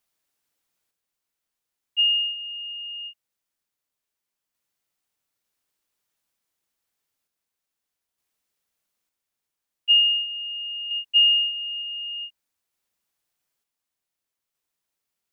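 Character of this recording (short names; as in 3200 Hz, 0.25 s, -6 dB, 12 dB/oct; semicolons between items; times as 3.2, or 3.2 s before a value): random-step tremolo 1.1 Hz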